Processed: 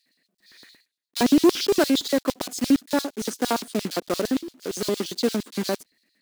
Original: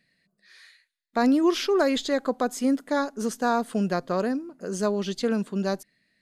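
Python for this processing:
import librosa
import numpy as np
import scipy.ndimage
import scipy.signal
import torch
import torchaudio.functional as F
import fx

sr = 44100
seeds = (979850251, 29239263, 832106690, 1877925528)

y = fx.block_float(x, sr, bits=3)
y = fx.filter_lfo_highpass(y, sr, shape='square', hz=8.7, low_hz=270.0, high_hz=4100.0, q=2.1)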